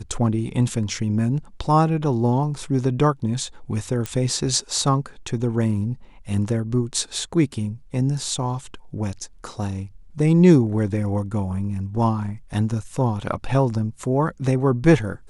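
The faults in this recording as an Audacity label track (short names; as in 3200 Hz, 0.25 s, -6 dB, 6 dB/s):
4.060000	4.060000	pop -11 dBFS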